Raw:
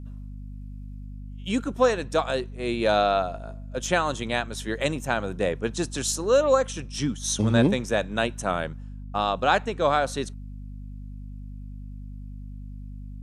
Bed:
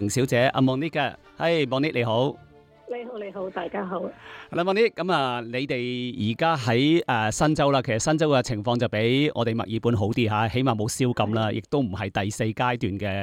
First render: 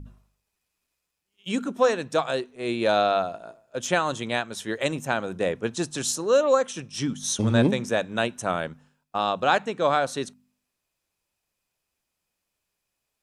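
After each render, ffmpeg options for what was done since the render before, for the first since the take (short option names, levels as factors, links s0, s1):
-af "bandreject=f=50:t=h:w=4,bandreject=f=100:t=h:w=4,bandreject=f=150:t=h:w=4,bandreject=f=200:t=h:w=4,bandreject=f=250:t=h:w=4"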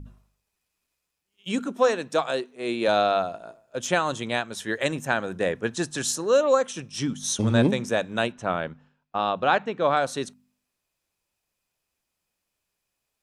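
-filter_complex "[0:a]asettb=1/sr,asplit=3[s0][s1][s2];[s0]atrim=end=1.594[s3];[s1]atrim=start=1.59:end=2.88,asetpts=PTS-STARTPTS,afade=t=in:d=0.004:c=qsin,afade=t=out:st=1.286:d=0.004:c=qsin,highpass=170[s4];[s2]atrim=start=2.876[s5];[s3][s4]acrossfade=d=0.004:c1=hsin:c2=qsin[s6];[s6][s5]acrossfade=d=0.004:c1=qsin:c2=hsin,asettb=1/sr,asplit=3[s7][s8][s9];[s7]atrim=end=4.604[s10];[s8]atrim=start=4.6:end=6.29,asetpts=PTS-STARTPTS,afade=t=in:d=0.004:c=qsin,afade=t=out:st=1.686:d=0.004:c=qsin,equalizer=f=1700:t=o:w=0.28:g=6.5[s11];[s9]atrim=start=6.286[s12];[s10][s11]acrossfade=d=0.004:c1=hsin:c2=qsin[s13];[s13][s12]acrossfade=d=0.004:c1=qsin:c2=hsin,asettb=1/sr,asplit=3[s14][s15][s16];[s14]atrim=end=8.324[s17];[s15]atrim=start=8.32:end=9.97,asetpts=PTS-STARTPTS,afade=t=in:d=0.004:c=qsin,afade=t=out:st=1.646:d=0.004:c=qsin,lowpass=3600[s18];[s16]atrim=start=9.966[s19];[s17][s18]acrossfade=d=0.004:c1=hsin:c2=qsin[s20];[s20][s19]acrossfade=d=0.004:c1=qsin:c2=hsin"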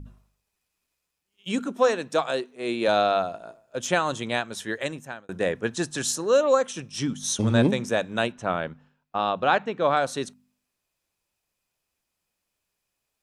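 -filter_complex "[0:a]asplit=2[s0][s1];[s0]atrim=end=5.29,asetpts=PTS-STARTPTS,afade=t=out:st=4.57:d=0.72[s2];[s1]atrim=start=5.29,asetpts=PTS-STARTPTS,afade=t=in:d=0.004:c=hsin[s3];[s2][s3]concat=n=2:v=0:a=1"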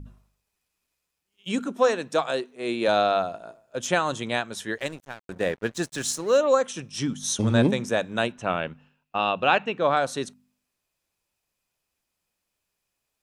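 -filter_complex "[0:a]asettb=1/sr,asplit=3[s0][s1][s2];[s0]atrim=end=4.784[s3];[s1]atrim=start=4.78:end=6.38,asetpts=PTS-STARTPTS,afade=t=in:d=0.004:c=qsin,afade=t=out:st=1.596:d=0.004:c=qsin,aeval=exprs='sgn(val(0))*max(abs(val(0))-0.0075,0)':c=same[s4];[s2]atrim=start=6.376[s5];[s3][s4]acrossfade=d=0.004:c1=hsin:c2=qsin[s6];[s6][s5]acrossfade=d=0.004:c1=qsin:c2=hsin,asettb=1/sr,asplit=3[s7][s8][s9];[s7]atrim=end=8.414[s10];[s8]atrim=start=8.41:end=9.78,asetpts=PTS-STARTPTS,afade=t=in:d=0.004:c=qsin,afade=t=out:st=1.366:d=0.004:c=qsin,equalizer=f=2700:w=6.4:g=14[s11];[s9]atrim=start=9.776[s12];[s10][s11]acrossfade=d=0.004:c1=hsin:c2=qsin[s13];[s13][s12]acrossfade=d=0.004:c1=qsin:c2=hsin"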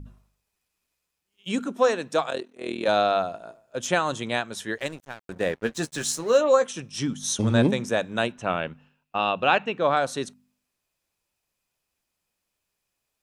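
-filter_complex "[0:a]asettb=1/sr,asplit=3[s0][s1][s2];[s0]atrim=end=2.304[s3];[s1]atrim=start=2.3:end=2.87,asetpts=PTS-STARTPTS,afade=t=in:d=0.004:c=qsin,afade=t=out:st=0.566:d=0.004:c=qsin,tremolo=f=41:d=0.857[s4];[s2]atrim=start=2.866[s5];[s3][s4]acrossfade=d=0.004:c1=hsin:c2=qsin[s6];[s6][s5]acrossfade=d=0.004:c1=qsin:c2=hsin,asettb=1/sr,asplit=3[s7][s8][s9];[s7]atrim=end=5.554[s10];[s8]atrim=start=5.55:end=6.66,asetpts=PTS-STARTPTS,afade=t=in:d=0.004:c=qsin,afade=t=out:st=1.106:d=0.004:c=qsin,asplit=2[s11][s12];[s12]adelay=13,volume=0.398[s13];[s11][s13]amix=inputs=2:normalize=0,atrim=end_sample=48951[s14];[s9]atrim=start=6.656[s15];[s10][s14]acrossfade=d=0.004:c1=hsin:c2=qsin[s16];[s16][s15]acrossfade=d=0.004:c1=qsin:c2=hsin"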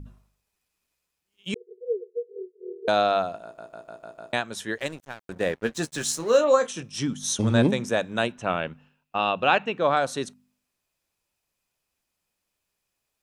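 -filter_complex "[0:a]asettb=1/sr,asplit=3[s0][s1][s2];[s0]atrim=end=1.544[s3];[s1]atrim=start=1.54:end=2.88,asetpts=PTS-STARTPTS,afade=t=in:d=0.004:c=qsin,afade=t=out:st=1.336:d=0.004:c=qsin,asuperpass=centerf=420:order=20:qfactor=3.4[s4];[s2]atrim=start=2.876[s5];[s3][s4]acrossfade=d=0.004:c1=hsin:c2=qsin[s6];[s6][s5]acrossfade=d=0.004:c1=qsin:c2=hsin,asettb=1/sr,asplit=3[s7][s8][s9];[s7]atrim=end=6.174[s10];[s8]atrim=start=6.17:end=6.83,asetpts=PTS-STARTPTS,afade=t=in:d=0.004:c=qsin,afade=t=out:st=0.656:d=0.004:c=qsin,asplit=2[s11][s12];[s12]adelay=31,volume=0.266[s13];[s11][s13]amix=inputs=2:normalize=0,atrim=end_sample=29106[s14];[s9]atrim=start=6.826[s15];[s10][s14]acrossfade=d=0.004:c1=hsin:c2=qsin[s16];[s16][s15]acrossfade=d=0.004:c1=qsin:c2=hsin,asplit=7[s17][s18][s19][s20][s21][s22][s23];[s17]atrim=end=3.582[s24];[s18]atrim=start=3.428:end=3.582[s25];[s19]atrim=start=3.428:end=3.582[s26];[s20]atrim=start=3.428:end=3.582[s27];[s21]atrim=start=3.428:end=3.582[s28];[s22]atrim=start=3.428:end=3.582[s29];[s23]atrim=start=4.328[s30];[s24][s25]acrossfade=d=0.004:c1=hsin:c2=hsin[s31];[s31][s26]acrossfade=d=0.004:c1=hsin:c2=hsin[s32];[s32][s27]acrossfade=d=0.004:c1=hsin:c2=hsin[s33];[s33][s28]acrossfade=d=0.004:c1=hsin:c2=hsin[s34];[s34][s29]acrossfade=d=0.004:c1=hsin:c2=hsin[s35];[s35][s30]acrossfade=d=0.004:c1=hsin:c2=hsin"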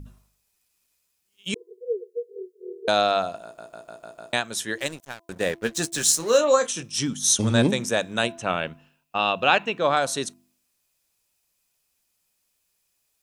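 -af "highshelf=f=3800:g=11,bandreject=f=336:t=h:w=4,bandreject=f=672:t=h:w=4,bandreject=f=1008:t=h:w=4"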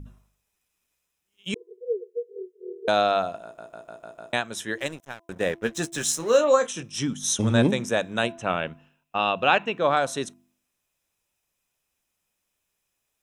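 -af "highshelf=f=4700:g=-8,bandreject=f=4500:w=5.1"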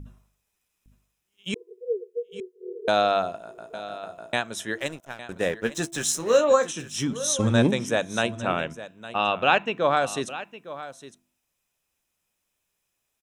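-af "aecho=1:1:859:0.178"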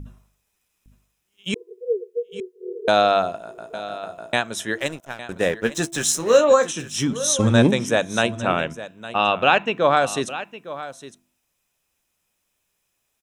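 -af "volume=1.68,alimiter=limit=0.708:level=0:latency=1"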